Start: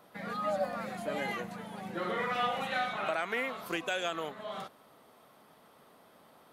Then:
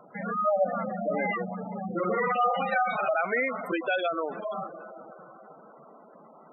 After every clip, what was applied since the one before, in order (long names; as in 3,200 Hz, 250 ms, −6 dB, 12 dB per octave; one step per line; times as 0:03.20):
dense smooth reverb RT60 4.8 s, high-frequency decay 0.55×, pre-delay 95 ms, DRR 12 dB
gate on every frequency bin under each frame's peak −10 dB strong
level +8 dB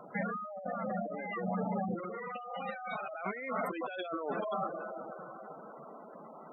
compressor whose output falls as the input rises −35 dBFS, ratio −1
level −3 dB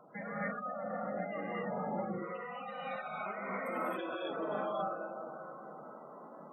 reverb whose tail is shaped and stops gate 300 ms rising, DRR −7 dB
level −8.5 dB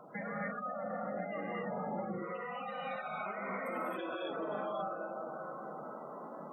downward compressor 2 to 1, threshold −45 dBFS, peak gain reduction 7.5 dB
level +5 dB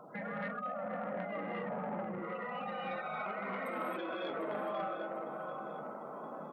repeating echo 746 ms, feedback 35%, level −12 dB
saturating transformer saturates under 880 Hz
level +1 dB